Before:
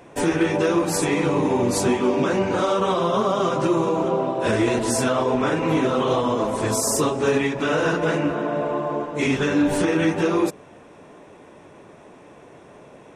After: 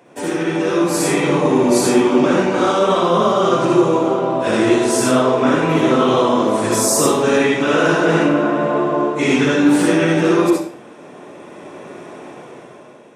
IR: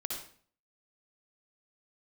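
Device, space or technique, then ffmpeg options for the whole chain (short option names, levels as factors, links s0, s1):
far laptop microphone: -filter_complex "[1:a]atrim=start_sample=2205[s0];[0:a][s0]afir=irnorm=-1:irlink=0,highpass=120,dynaudnorm=f=250:g=7:m=3.76,highpass=90,volume=0.891"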